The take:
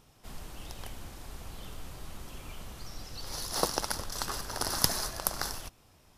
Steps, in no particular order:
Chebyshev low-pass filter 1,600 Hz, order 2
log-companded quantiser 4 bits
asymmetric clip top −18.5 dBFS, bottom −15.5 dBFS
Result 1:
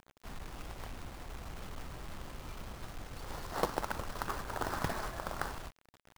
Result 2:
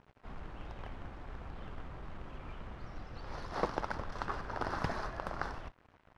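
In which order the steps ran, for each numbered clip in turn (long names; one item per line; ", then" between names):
asymmetric clip, then Chebyshev low-pass filter, then log-companded quantiser
asymmetric clip, then log-companded quantiser, then Chebyshev low-pass filter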